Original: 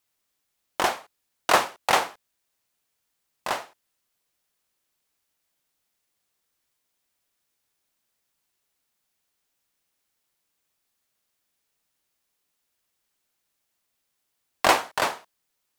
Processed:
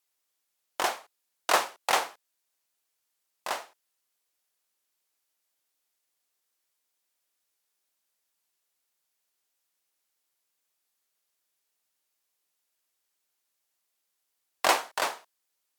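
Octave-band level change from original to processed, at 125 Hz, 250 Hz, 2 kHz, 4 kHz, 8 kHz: below −10 dB, −8.0 dB, −4.5 dB, −3.0 dB, −1.5 dB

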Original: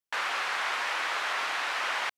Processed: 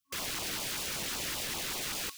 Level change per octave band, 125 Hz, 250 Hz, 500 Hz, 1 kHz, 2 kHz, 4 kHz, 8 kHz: can't be measured, +9.5 dB, −4.0 dB, −13.5 dB, −11.0 dB, −1.5 dB, +8.0 dB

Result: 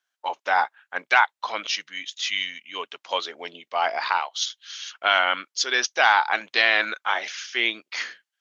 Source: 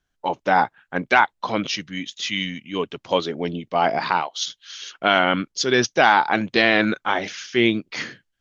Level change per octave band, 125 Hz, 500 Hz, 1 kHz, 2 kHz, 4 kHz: below −25 dB, −9.0 dB, −3.0 dB, −0.5 dB, 0.0 dB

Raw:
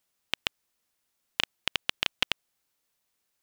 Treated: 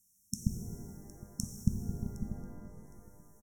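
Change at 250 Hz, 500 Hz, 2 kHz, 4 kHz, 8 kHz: +12.5 dB, −6.0 dB, below −35 dB, −25.0 dB, +2.0 dB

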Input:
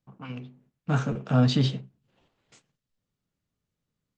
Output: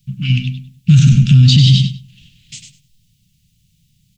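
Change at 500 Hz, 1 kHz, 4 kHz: below −15 dB, below −10 dB, +18.0 dB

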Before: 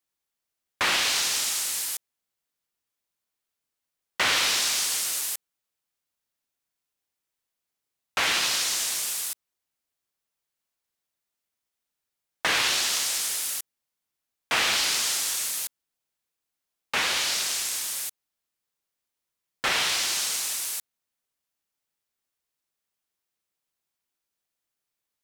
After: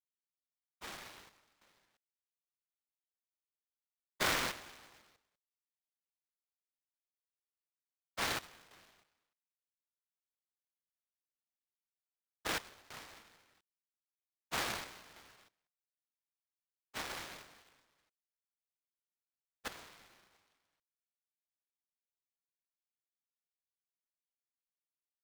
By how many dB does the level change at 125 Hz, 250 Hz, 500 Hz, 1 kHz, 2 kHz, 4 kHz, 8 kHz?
−5.0, −7.0, −9.5, −12.5, −15.5, −20.0, −23.5 decibels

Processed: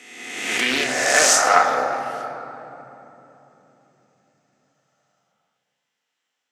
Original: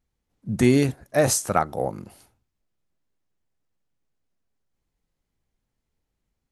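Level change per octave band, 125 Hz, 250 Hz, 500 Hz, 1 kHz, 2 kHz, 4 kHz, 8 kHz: −19.0, −9.0, +0.5, +9.5, +14.0, +13.0, +9.0 decibels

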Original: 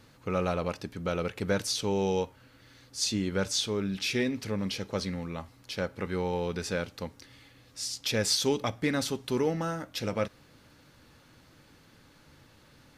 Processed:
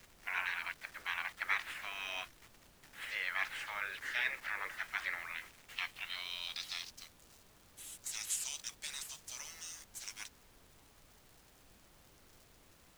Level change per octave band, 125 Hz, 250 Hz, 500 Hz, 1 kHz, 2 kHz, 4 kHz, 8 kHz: −30.5, −34.0, −28.0, −8.5, +1.0, −9.5, −7.5 decibels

